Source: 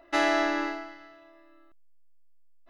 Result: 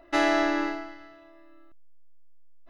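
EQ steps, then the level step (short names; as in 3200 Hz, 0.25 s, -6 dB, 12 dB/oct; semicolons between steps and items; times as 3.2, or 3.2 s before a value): low shelf 280 Hz +7.5 dB; 0.0 dB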